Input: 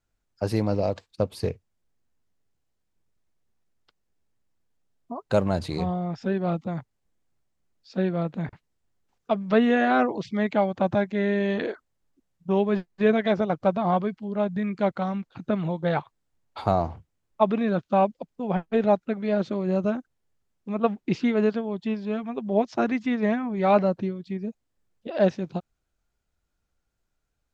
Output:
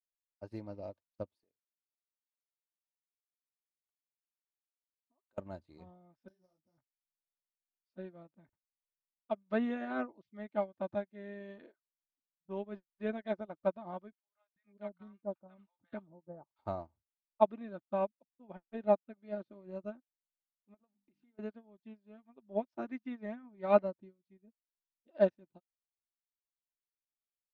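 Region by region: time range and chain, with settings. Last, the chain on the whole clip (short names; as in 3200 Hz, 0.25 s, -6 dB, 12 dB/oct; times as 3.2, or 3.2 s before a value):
1.37–5.38 HPF 240 Hz + compressor 5:1, threshold -38 dBFS
6.28–6.78 sample sorter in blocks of 8 samples + compressor 12:1, threshold -26 dBFS + detuned doubles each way 37 cents
14.12–16.59 air absorption 65 m + bands offset in time highs, lows 0.44 s, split 1000 Hz
20.74–21.39 notches 50/100/150/200/250/300 Hz + compressor, threshold -34 dBFS
whole clip: high shelf 3400 Hz -8.5 dB; comb 3.3 ms, depth 42%; upward expander 2.5:1, over -37 dBFS; gain -5.5 dB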